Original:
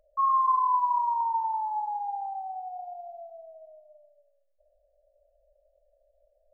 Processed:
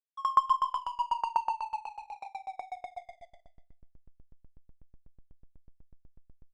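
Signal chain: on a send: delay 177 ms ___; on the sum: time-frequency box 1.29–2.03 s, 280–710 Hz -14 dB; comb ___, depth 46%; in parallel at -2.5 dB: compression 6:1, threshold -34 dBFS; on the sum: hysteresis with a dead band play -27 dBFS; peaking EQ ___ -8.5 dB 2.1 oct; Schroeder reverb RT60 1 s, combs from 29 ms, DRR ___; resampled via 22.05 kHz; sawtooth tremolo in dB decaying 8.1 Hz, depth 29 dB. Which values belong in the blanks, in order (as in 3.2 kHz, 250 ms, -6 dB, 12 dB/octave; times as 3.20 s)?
-5 dB, 5.5 ms, 210 Hz, 5.5 dB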